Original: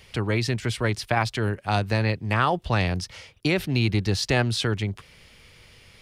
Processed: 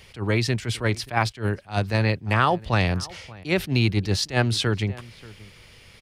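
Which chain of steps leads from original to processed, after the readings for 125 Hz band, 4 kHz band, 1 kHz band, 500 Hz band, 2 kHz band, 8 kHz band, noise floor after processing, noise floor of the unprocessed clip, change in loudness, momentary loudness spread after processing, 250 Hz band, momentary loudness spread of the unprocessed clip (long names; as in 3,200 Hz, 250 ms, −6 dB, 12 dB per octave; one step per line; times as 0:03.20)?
+1.0 dB, +1.0 dB, +1.0 dB, +0.5 dB, +1.0 dB, +1.5 dB, −50 dBFS, −53 dBFS, +1.0 dB, 8 LU, +0.5 dB, 7 LU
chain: slap from a distant wall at 100 metres, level −21 dB
level that may rise only so fast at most 250 dB per second
level +2 dB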